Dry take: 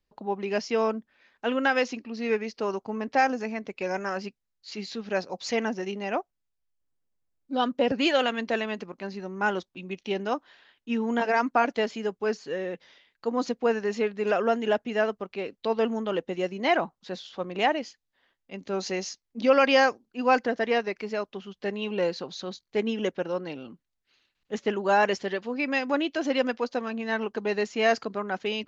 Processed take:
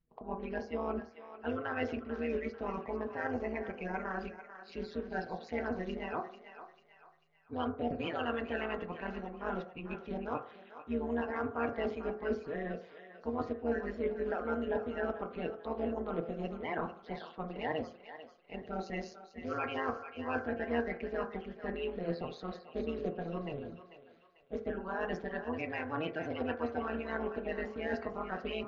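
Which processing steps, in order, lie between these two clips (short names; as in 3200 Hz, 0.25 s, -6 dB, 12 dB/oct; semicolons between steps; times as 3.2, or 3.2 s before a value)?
bin magnitudes rounded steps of 30 dB; LPF 2400 Hz 12 dB/oct; low shelf 170 Hz +4.5 dB; reverse; compressor 6:1, threshold -31 dBFS, peak gain reduction 15 dB; reverse; AM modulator 160 Hz, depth 75%; thinning echo 0.443 s, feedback 44%, high-pass 730 Hz, level -10 dB; on a send at -4.5 dB: reverb RT60 0.50 s, pre-delay 3 ms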